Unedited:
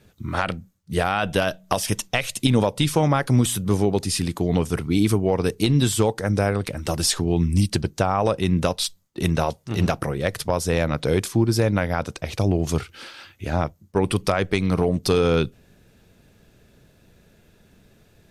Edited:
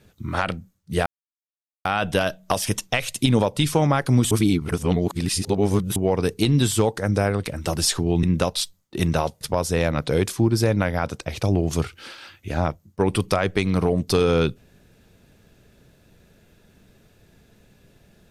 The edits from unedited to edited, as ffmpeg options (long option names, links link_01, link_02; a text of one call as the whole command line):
ffmpeg -i in.wav -filter_complex "[0:a]asplit=6[link_01][link_02][link_03][link_04][link_05][link_06];[link_01]atrim=end=1.06,asetpts=PTS-STARTPTS,afade=type=out:start_time=1.056:duration=0.004:curve=hsin,apad=pad_dur=0.79[link_07];[link_02]atrim=start=1.06:end=3.522,asetpts=PTS-STARTPTS,afade=type=in:duration=0.004:curve=hsin[link_08];[link_03]atrim=start=3.518:end=5.172,asetpts=PTS-STARTPTS,areverse[link_09];[link_04]atrim=start=5.168:end=7.442[link_10];[link_05]atrim=start=8.458:end=9.642[link_11];[link_06]atrim=start=10.368[link_12];[link_07][link_08]concat=n=2:v=0:a=1[link_13];[link_13][link_09]acrossfade=duration=0.004:curve1=hsin:curve2=hsin[link_14];[link_14][link_10]acrossfade=duration=0.004:curve1=hsin:curve2=hsin[link_15];[link_15][link_11]acrossfade=duration=0.004:curve1=hsin:curve2=hsin[link_16];[link_16][link_12]acrossfade=duration=0.004:curve1=hsin:curve2=hsin" out.wav